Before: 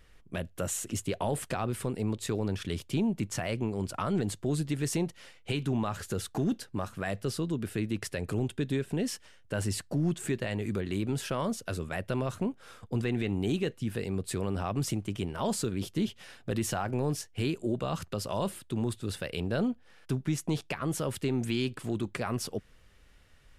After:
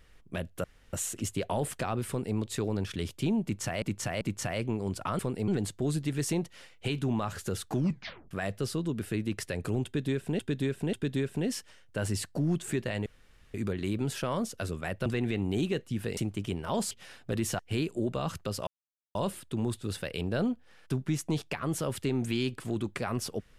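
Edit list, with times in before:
0:00.64: splice in room tone 0.29 s
0:01.79–0:02.08: duplicate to 0:04.12
0:03.14–0:03.53: repeat, 3 plays
0:06.38: tape stop 0.57 s
0:08.49–0:09.03: repeat, 3 plays
0:10.62: splice in room tone 0.48 s
0:12.14–0:12.97: remove
0:14.08–0:14.88: remove
0:15.62–0:16.10: remove
0:16.78–0:17.26: remove
0:18.34: splice in silence 0.48 s

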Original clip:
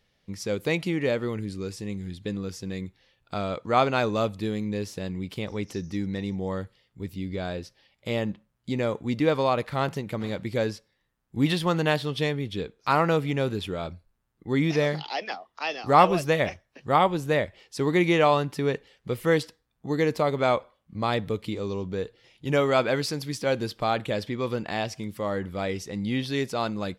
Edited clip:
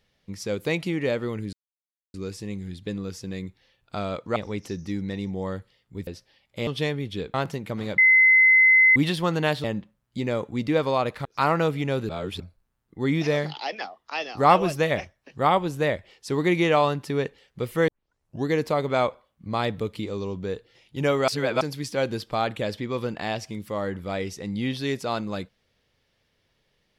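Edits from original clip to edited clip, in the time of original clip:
0:01.53: splice in silence 0.61 s
0:03.75–0:05.41: remove
0:07.12–0:07.56: remove
0:08.16–0:09.77: swap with 0:12.07–0:12.74
0:10.41–0:11.39: beep over 2,050 Hz −12.5 dBFS
0:13.58–0:13.89: reverse
0:19.37: tape start 0.59 s
0:22.77–0:23.10: reverse

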